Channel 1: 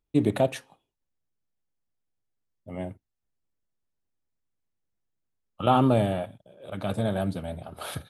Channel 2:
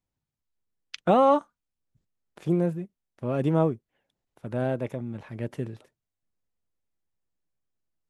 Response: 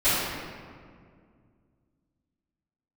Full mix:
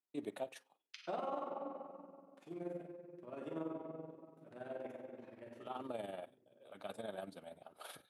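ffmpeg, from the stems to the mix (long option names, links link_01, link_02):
-filter_complex "[0:a]volume=-12dB[link_01];[1:a]volume=-12dB,afade=type=out:start_time=0.85:duration=0.35:silence=0.446684,asplit=3[link_02][link_03][link_04];[link_03]volume=-12.5dB[link_05];[link_04]apad=whole_len=357111[link_06];[link_01][link_06]sidechaincompress=threshold=-54dB:ratio=8:attack=12:release=639[link_07];[2:a]atrim=start_sample=2205[link_08];[link_05][link_08]afir=irnorm=-1:irlink=0[link_09];[link_07][link_02][link_09]amix=inputs=3:normalize=0,highpass=340,tremolo=f=21:d=0.621,alimiter=level_in=6.5dB:limit=-24dB:level=0:latency=1:release=282,volume=-6.5dB"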